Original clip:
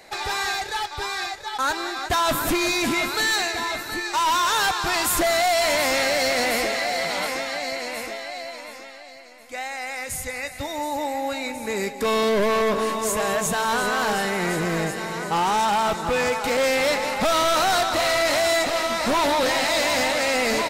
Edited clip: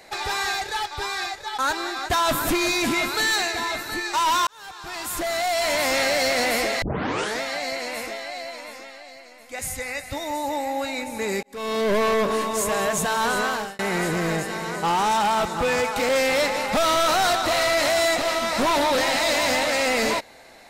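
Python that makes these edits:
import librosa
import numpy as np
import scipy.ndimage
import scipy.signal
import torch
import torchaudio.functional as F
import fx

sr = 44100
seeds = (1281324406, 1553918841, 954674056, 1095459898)

y = fx.edit(x, sr, fx.fade_in_span(start_s=4.47, length_s=1.54),
    fx.tape_start(start_s=6.82, length_s=0.59),
    fx.cut(start_s=9.59, length_s=0.48),
    fx.fade_in_span(start_s=11.91, length_s=0.51),
    fx.fade_out_span(start_s=13.92, length_s=0.35), tone=tone)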